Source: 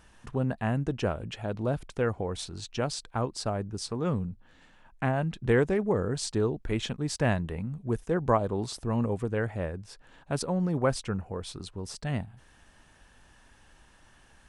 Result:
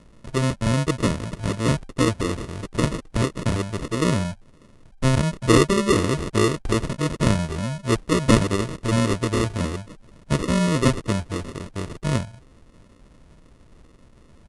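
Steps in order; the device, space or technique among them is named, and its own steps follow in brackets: crushed at another speed (playback speed 2×; sample-and-hold 28×; playback speed 0.5×); gain +7.5 dB

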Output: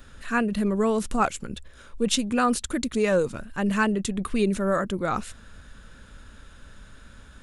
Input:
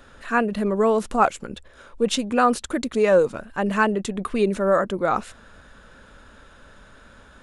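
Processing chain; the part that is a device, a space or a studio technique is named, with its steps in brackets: smiley-face EQ (low shelf 180 Hz +5.5 dB; bell 670 Hz -7.5 dB 2.2 oct; high shelf 7700 Hz +6 dB)

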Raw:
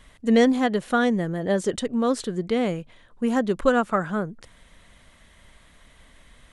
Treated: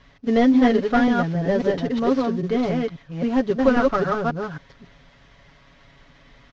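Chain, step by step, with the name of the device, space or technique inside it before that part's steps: reverse delay 0.269 s, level -2 dB; early wireless headset (HPF 160 Hz 6 dB/oct; CVSD 32 kbps); low shelf 130 Hz +11 dB; high shelf 4100 Hz -9.5 dB; comb 7.2 ms, depth 64%

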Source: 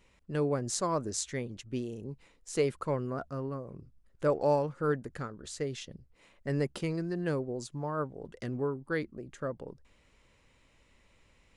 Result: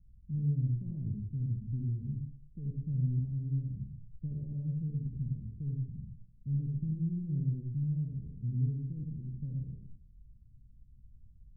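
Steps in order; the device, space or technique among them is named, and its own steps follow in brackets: club heard from the street (limiter -26 dBFS, peak gain reduction 10.5 dB; LPF 150 Hz 24 dB/oct; reverb RT60 0.50 s, pre-delay 65 ms, DRR -2 dB); gain +8 dB

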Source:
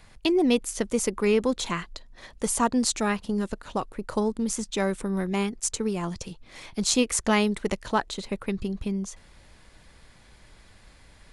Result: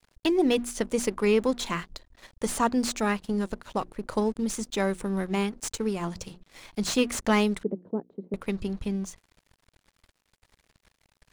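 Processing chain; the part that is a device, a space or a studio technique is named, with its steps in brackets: notches 60/120/180/240/300/360 Hz; early transistor amplifier (crossover distortion -48.5 dBFS; slew limiter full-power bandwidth 210 Hz); 7.63–8.34 Chebyshev band-pass 180–440 Hz, order 2

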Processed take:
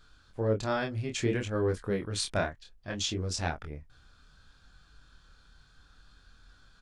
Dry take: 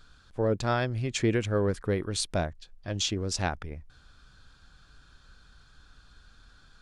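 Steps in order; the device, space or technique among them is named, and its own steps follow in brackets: double-tracked vocal (doubler 20 ms -13.5 dB; chorus 0.62 Hz, depth 6.3 ms); 2.12–3 dynamic EQ 1500 Hz, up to +8 dB, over -50 dBFS, Q 0.81

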